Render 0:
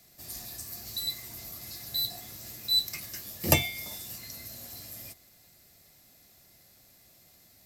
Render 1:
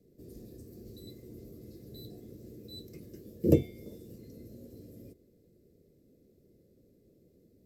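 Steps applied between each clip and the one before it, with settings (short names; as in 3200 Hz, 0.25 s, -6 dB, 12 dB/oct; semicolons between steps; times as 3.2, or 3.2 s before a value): EQ curve 110 Hz 0 dB, 470 Hz +11 dB, 770 Hz -24 dB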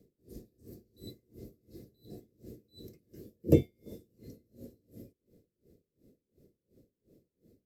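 dB-linear tremolo 2.8 Hz, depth 28 dB; gain +3 dB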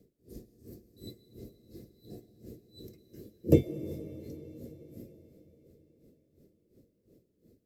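reverb RT60 4.6 s, pre-delay 80 ms, DRR 12 dB; gain +1 dB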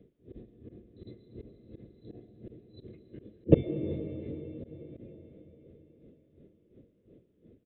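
auto swell 0.107 s; downsampling 8000 Hz; gain +5 dB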